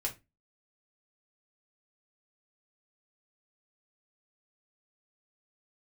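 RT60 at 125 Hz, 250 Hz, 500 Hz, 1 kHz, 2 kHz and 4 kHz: 0.35, 0.35, 0.25, 0.20, 0.20, 0.20 seconds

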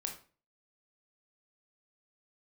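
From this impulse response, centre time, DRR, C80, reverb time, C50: 17 ms, 3.0 dB, 14.0 dB, 0.40 s, 8.5 dB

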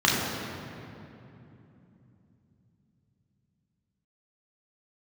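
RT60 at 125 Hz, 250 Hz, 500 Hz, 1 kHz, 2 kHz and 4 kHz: 5.4, 4.9, 3.2, 2.7, 2.4, 1.7 seconds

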